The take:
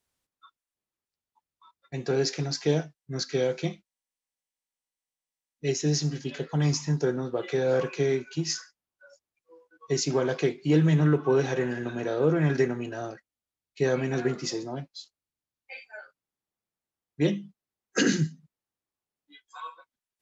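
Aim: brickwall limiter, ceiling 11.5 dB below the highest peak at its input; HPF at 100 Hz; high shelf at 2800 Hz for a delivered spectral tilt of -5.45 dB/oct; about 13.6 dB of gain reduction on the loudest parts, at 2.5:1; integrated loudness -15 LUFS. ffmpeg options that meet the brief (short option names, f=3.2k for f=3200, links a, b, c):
-af "highpass=100,highshelf=f=2.8k:g=-7.5,acompressor=threshold=-40dB:ratio=2.5,volume=29.5dB,alimiter=limit=-5dB:level=0:latency=1"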